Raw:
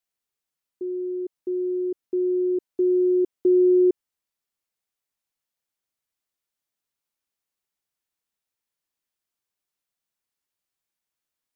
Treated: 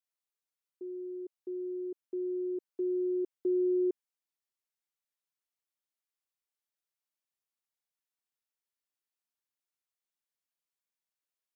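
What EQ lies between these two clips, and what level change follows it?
high-pass filter 390 Hz 6 dB per octave
−8.0 dB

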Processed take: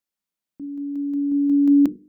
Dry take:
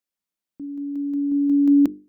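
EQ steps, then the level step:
parametric band 170 Hz +3 dB
mains-hum notches 60/120/180/240/300/360/420/480 Hz
0.0 dB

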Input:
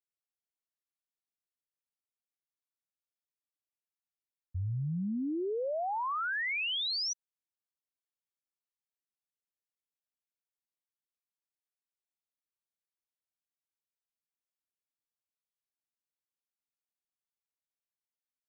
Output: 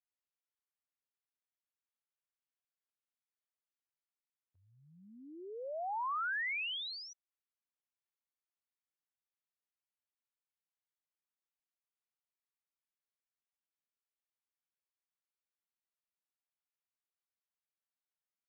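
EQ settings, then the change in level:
high-pass filter 810 Hz 12 dB per octave
high-frequency loss of the air 310 metres
0.0 dB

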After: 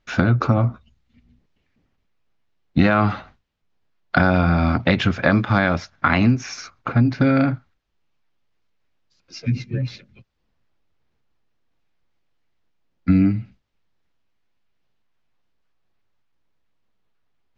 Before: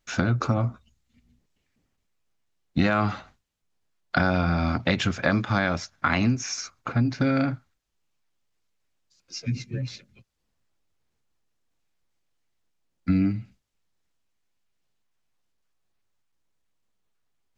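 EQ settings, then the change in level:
high-frequency loss of the air 230 metres
high-shelf EQ 6,000 Hz +7.5 dB
+6.5 dB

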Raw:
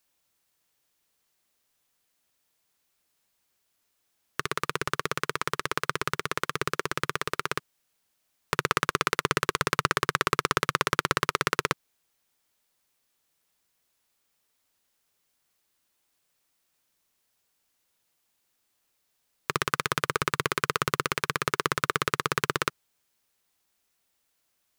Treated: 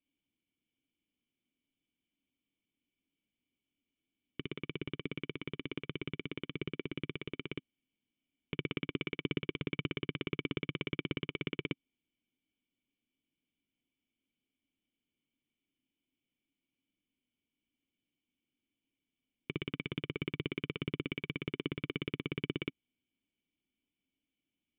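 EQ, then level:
formant resonators in series i
+6.0 dB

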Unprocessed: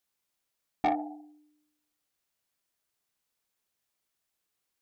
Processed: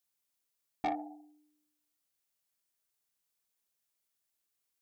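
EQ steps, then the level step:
high-shelf EQ 5,000 Hz +7.5 dB
−6.5 dB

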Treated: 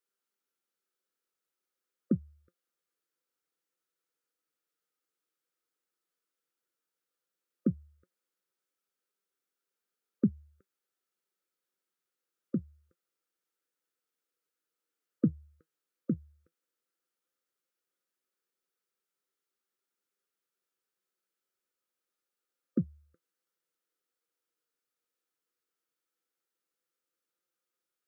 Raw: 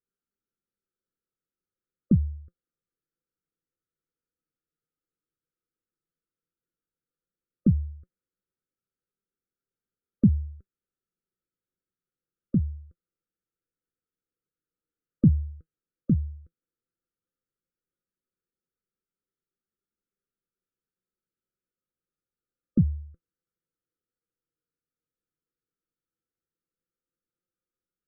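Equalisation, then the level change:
Bessel high-pass filter 520 Hz, order 2
+5.5 dB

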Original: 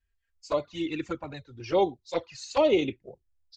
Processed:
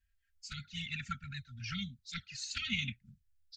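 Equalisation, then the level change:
linear-phase brick-wall band-stop 240–1,300 Hz
0.0 dB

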